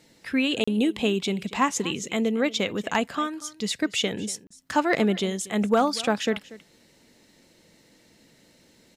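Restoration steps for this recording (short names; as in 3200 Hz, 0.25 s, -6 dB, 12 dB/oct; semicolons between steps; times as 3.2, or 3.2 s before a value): clip repair -11 dBFS; interpolate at 0.64/4.47, 35 ms; inverse comb 0.237 s -19 dB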